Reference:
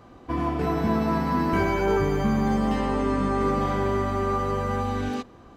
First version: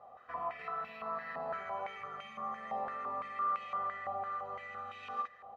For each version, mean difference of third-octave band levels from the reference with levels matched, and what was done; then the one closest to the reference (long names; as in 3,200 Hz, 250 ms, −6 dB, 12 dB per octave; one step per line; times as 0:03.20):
10.5 dB: comb filter 1.6 ms, depth 90%
downward compressor 5 to 1, threshold −27 dBFS, peak gain reduction 9 dB
multi-tap delay 50/638 ms −5/−17 dB
band-pass on a step sequencer 5.9 Hz 810–2,500 Hz
level +1 dB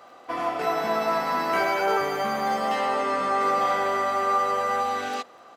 7.5 dB: high-pass filter 570 Hz 12 dB per octave
comb filter 1.5 ms, depth 36%
surface crackle 30 per second −55 dBFS
level +5 dB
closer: second